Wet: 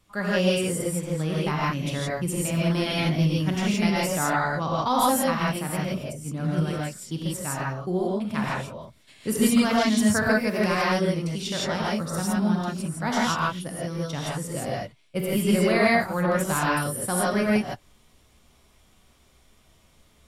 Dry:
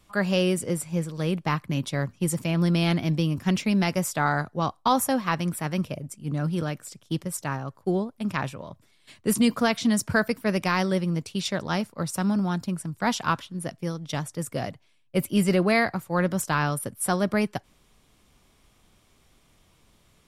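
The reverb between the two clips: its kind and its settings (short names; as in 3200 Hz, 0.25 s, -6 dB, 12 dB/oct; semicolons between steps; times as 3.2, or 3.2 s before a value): non-linear reverb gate 0.19 s rising, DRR -5.5 dB; gain -4.5 dB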